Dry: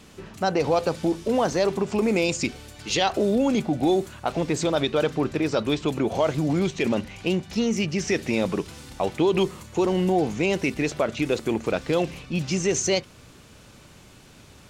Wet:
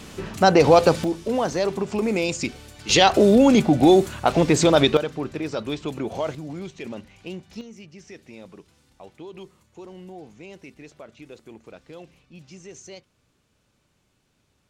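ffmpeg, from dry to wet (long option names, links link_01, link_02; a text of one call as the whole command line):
ffmpeg -i in.wav -af "asetnsamples=nb_out_samples=441:pad=0,asendcmd='1.04 volume volume -1dB;2.89 volume volume 7dB;4.97 volume volume -4.5dB;6.35 volume volume -11dB;7.61 volume volume -19dB',volume=8dB" out.wav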